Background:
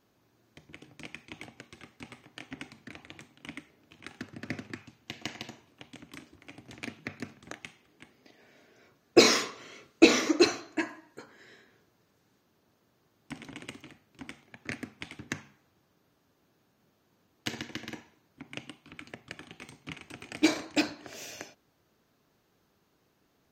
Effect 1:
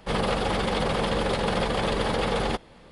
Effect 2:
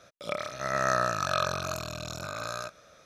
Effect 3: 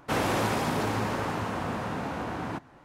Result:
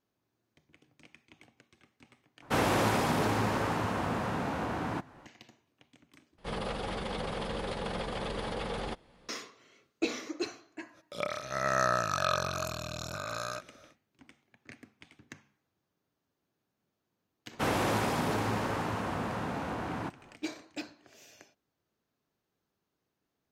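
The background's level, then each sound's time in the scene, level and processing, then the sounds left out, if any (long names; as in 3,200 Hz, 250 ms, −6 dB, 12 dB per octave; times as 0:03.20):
background −13 dB
0:02.42: overwrite with 3 −0.5 dB
0:06.38: overwrite with 1 −10.5 dB
0:10.91: mix in 2 −1.5 dB, fades 0.10 s
0:17.51: mix in 3 −2.5 dB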